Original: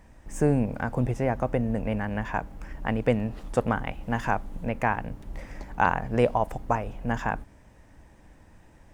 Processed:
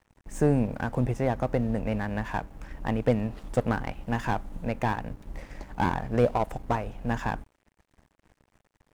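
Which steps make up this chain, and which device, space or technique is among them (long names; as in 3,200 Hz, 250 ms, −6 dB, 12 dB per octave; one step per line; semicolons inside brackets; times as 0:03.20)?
early transistor amplifier (dead-zone distortion −49 dBFS; slew-rate limiting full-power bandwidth 86 Hz)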